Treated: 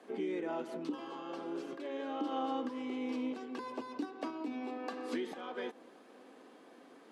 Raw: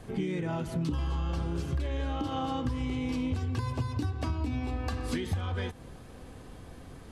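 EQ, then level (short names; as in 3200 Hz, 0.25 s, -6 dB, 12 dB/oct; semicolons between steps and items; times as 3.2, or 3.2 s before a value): steep high-pass 250 Hz 36 dB/oct; dynamic EQ 460 Hz, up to +4 dB, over -47 dBFS, Q 0.73; high shelf 6000 Hz -12 dB; -4.5 dB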